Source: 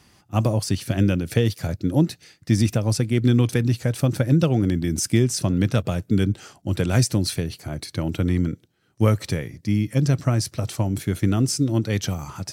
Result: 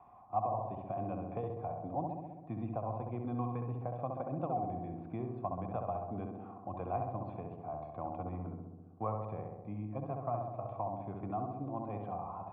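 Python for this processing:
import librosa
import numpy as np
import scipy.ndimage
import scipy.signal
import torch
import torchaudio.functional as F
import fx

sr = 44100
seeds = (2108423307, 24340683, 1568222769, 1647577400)

p1 = fx.formant_cascade(x, sr, vowel='a')
p2 = p1 + fx.echo_filtered(p1, sr, ms=66, feedback_pct=70, hz=1500.0, wet_db=-3, dry=0)
p3 = fx.band_squash(p2, sr, depth_pct=40)
y = p3 * librosa.db_to_amplitude(3.0)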